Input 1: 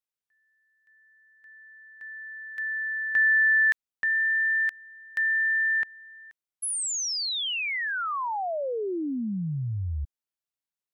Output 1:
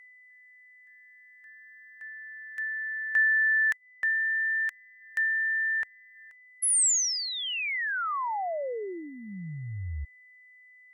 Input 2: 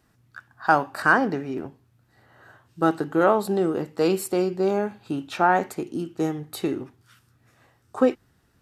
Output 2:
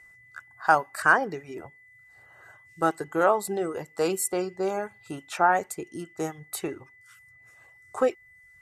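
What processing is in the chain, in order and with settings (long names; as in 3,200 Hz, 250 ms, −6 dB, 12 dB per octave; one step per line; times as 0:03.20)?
steady tone 2,000 Hz −49 dBFS
graphic EQ with 10 bands 125 Hz −3 dB, 250 Hz −11 dB, 4,000 Hz −6 dB, 8,000 Hz +8 dB
reverb reduction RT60 0.7 s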